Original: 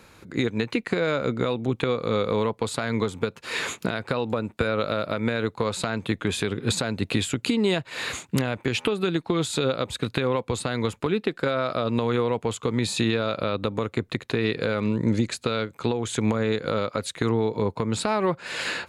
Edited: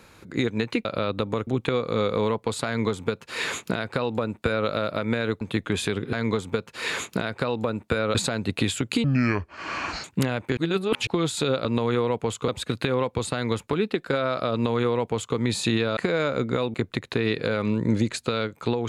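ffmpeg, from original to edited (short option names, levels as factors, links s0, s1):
-filter_complex "[0:a]asplit=14[s0][s1][s2][s3][s4][s5][s6][s7][s8][s9][s10][s11][s12][s13];[s0]atrim=end=0.852[s14];[s1]atrim=start=13.298:end=13.922[s15];[s2]atrim=start=1.618:end=5.562[s16];[s3]atrim=start=5.958:end=6.682[s17];[s4]atrim=start=2.818:end=4.842[s18];[s5]atrim=start=6.678:end=7.574[s19];[s6]atrim=start=7.57:end=8.2,asetpts=PTS-STARTPTS,asetrate=27783,aresample=44100[s20];[s7]atrim=start=8.196:end=8.732[s21];[s8]atrim=start=8.728:end=9.232,asetpts=PTS-STARTPTS,areverse[s22];[s9]atrim=start=9.228:end=9.812[s23];[s10]atrim=start=11.858:end=12.692[s24];[s11]atrim=start=9.808:end=13.302[s25];[s12]atrim=start=0.848:end=1.622[s26];[s13]atrim=start=13.918[s27];[s14][s15]acrossfade=d=0.004:c1=hsin:c2=hsin[s28];[s28][s16]acrossfade=d=0.004:c1=hsin:c2=hsin[s29];[s29][s17]acrossfade=d=0.004:c1=hsin:c2=hsin[s30];[s30][s18]acrossfade=d=0.004:c1=hsin:c2=hsin[s31];[s31][s19]acrossfade=d=0.004:c1=hsin:c2=hsin[s32];[s32][s20]acrossfade=d=0.004:c1=hsin:c2=hsin[s33];[s33][s21]acrossfade=d=0.004:c1=hsin:c2=hsin[s34];[s34][s22]acrossfade=d=0.004:c1=hsin:c2=hsin[s35];[s35][s23]acrossfade=d=0.004:c1=hsin:c2=hsin[s36];[s36][s24]acrossfade=d=0.004:c1=hsin:c2=hsin[s37];[s37][s25]acrossfade=d=0.004:c1=hsin:c2=hsin[s38];[s38][s26]acrossfade=d=0.004:c1=hsin:c2=hsin[s39];[s39][s27]acrossfade=d=0.004:c1=hsin:c2=hsin"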